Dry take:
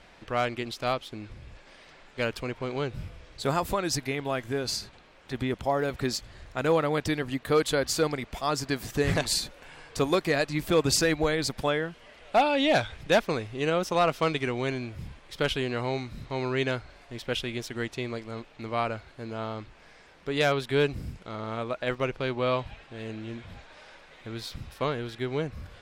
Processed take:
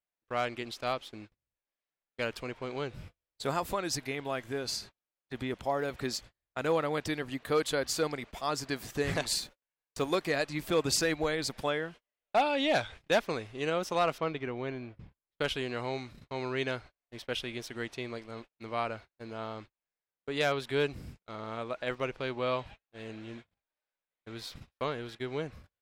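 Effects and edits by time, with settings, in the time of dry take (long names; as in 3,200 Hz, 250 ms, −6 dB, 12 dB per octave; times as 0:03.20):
0:09.35–0:10.08: mu-law and A-law mismatch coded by A
0:14.18–0:15.40: head-to-tape spacing loss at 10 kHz 25 dB
0:16.50–0:19.51: notch filter 7,200 Hz
whole clip: low-shelf EQ 190 Hz −6 dB; noise gate −42 dBFS, range −40 dB; level −4 dB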